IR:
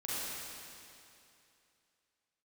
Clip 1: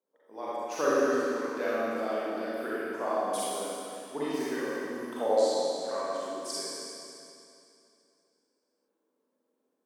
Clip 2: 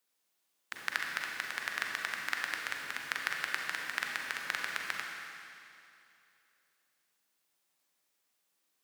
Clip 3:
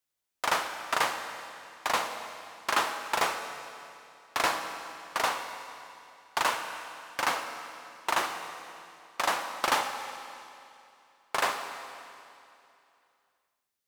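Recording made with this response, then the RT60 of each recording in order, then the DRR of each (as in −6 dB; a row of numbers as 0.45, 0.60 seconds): 1; 2.7, 2.7, 2.7 seconds; −9.5, 0.0, 6.5 decibels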